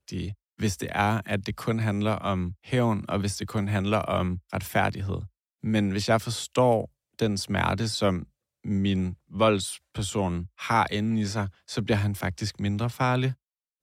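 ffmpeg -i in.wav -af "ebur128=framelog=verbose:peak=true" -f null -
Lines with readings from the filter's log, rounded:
Integrated loudness:
  I:         -27.3 LUFS
  Threshold: -37.4 LUFS
Loudness range:
  LRA:         1.5 LU
  Threshold: -47.3 LUFS
  LRA low:   -27.9 LUFS
  LRA high:  -26.5 LUFS
True peak:
  Peak:      -10.4 dBFS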